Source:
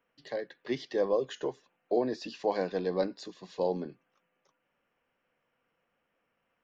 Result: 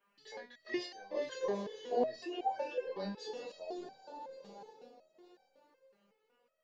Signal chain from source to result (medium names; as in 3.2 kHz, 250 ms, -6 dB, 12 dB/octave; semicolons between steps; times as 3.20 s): 2.20–2.87 s: formants replaced by sine waves; bass shelf 190 Hz -10 dB; hum notches 60/120/180/240 Hz; in parallel at +1 dB: compression, threshold -35 dBFS, peak gain reduction 11.5 dB; on the sum: echo that smears into a reverb 478 ms, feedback 46%, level -9 dB; random-step tremolo; chorus voices 6, 0.47 Hz, delay 25 ms, depth 1.1 ms; resonator arpeggio 5.4 Hz 200–770 Hz; trim +14 dB